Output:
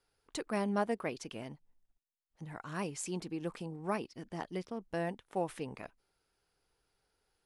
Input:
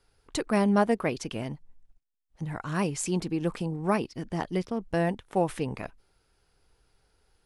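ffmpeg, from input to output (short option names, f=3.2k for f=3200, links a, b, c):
-af "lowshelf=f=130:g=-10,volume=-8dB"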